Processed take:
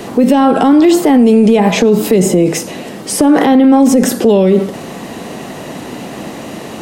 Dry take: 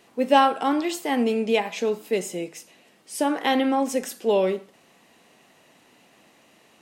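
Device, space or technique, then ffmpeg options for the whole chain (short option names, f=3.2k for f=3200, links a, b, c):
mastering chain: -filter_complex "[0:a]equalizer=f=2.5k:t=o:w=0.65:g=-3.5,acrossover=split=240|1900[a][b][c];[a]acompressor=threshold=-32dB:ratio=4[d];[b]acompressor=threshold=-32dB:ratio=4[e];[c]acompressor=threshold=-44dB:ratio=4[f];[d][e][f]amix=inputs=3:normalize=0,acompressor=threshold=-29dB:ratio=2.5,asoftclip=type=tanh:threshold=-20.5dB,tiltshelf=f=640:g=5.5,asoftclip=type=hard:threshold=-22dB,alimiter=level_in=32dB:limit=-1dB:release=50:level=0:latency=1,asettb=1/sr,asplit=3[g][h][i];[g]atrim=end=1.194[j];[h]atrim=start=1.19:end=1.71,asetpts=PTS-STARTPTS,afade=t=in:d=0.004:c=qsin,afade=t=out:st=0.516:d=0.004:c=qsin,equalizer=f=9.3k:t=o:w=0.42:g=7.5[k];[i]atrim=start=1.706[l];[j][k]acrossfade=d=0.004:c1=hsin:c2=qsin[m];[m][l]acrossfade=d=0.004:c1=qsin:c2=hsin,volume=-1dB"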